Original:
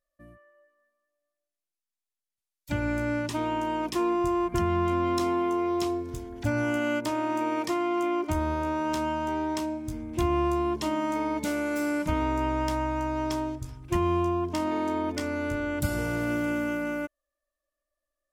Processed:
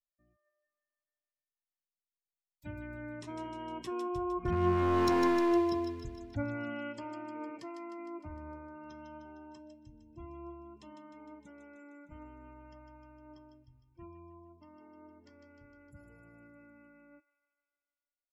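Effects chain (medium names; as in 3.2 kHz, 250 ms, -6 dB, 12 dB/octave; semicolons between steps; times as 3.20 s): Doppler pass-by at 5.20 s, 7 m/s, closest 1.8 m; spectral gate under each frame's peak -25 dB strong; bass shelf 180 Hz +3.5 dB; hard clipper -27 dBFS, distortion -11 dB; flange 0.17 Hz, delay 1.9 ms, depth 8.9 ms, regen +81%; feedback echo behind a high-pass 153 ms, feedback 61%, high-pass 2.3 kHz, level -5.5 dB; trim +7.5 dB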